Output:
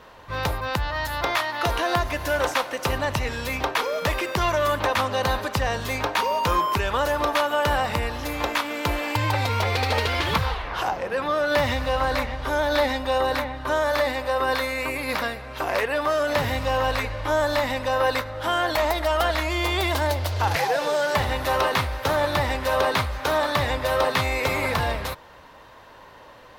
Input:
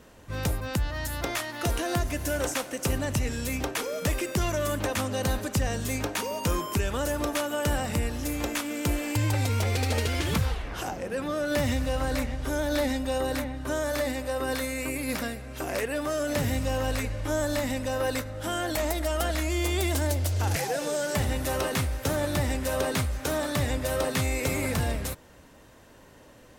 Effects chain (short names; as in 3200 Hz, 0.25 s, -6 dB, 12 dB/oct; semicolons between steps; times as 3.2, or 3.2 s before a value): graphic EQ 250/500/1000/2000/4000/8000 Hz -4/+3/+12/+4/+8/-8 dB